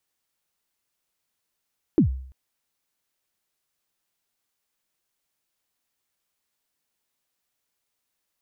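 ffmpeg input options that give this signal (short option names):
-f lavfi -i "aevalsrc='0.282*pow(10,-3*t/0.59)*sin(2*PI*(370*0.104/log(65/370)*(exp(log(65/370)*min(t,0.104)/0.104)-1)+65*max(t-0.104,0)))':d=0.34:s=44100"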